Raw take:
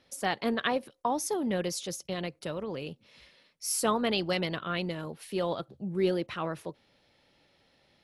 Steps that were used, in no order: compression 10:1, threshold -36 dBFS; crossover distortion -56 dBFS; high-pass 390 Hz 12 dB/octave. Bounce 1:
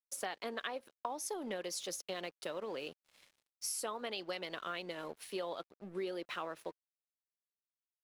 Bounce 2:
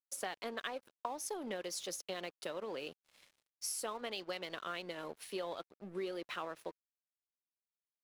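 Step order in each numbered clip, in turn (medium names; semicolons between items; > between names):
high-pass > crossover distortion > compression; high-pass > compression > crossover distortion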